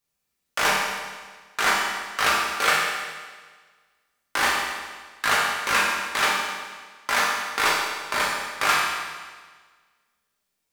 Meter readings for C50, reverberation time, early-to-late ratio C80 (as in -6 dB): 0.5 dB, 1.5 s, 2.5 dB